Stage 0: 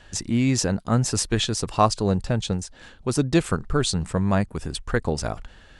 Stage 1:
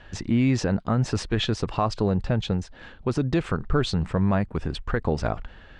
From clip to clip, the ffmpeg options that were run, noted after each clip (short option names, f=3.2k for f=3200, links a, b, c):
-af "lowpass=3k,alimiter=limit=-15dB:level=0:latency=1:release=75,volume=2.5dB"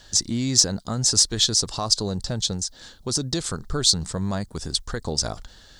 -af "aexciter=amount=12.9:drive=7.9:freq=4k,volume=-4.5dB"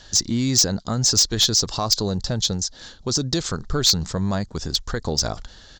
-af "aresample=16000,aresample=44100,aeval=exprs='0.841*sin(PI/2*2.51*val(0)/0.841)':c=same,volume=-8.5dB"